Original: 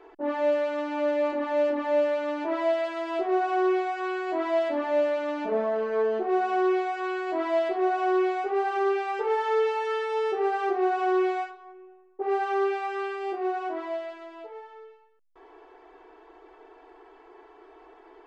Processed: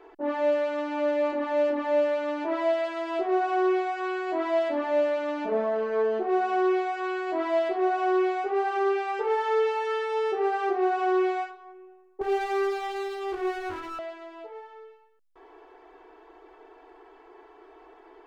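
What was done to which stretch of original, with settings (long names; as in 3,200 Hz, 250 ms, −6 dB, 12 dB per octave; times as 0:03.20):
0:12.21–0:13.99: lower of the sound and its delayed copy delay 2.3 ms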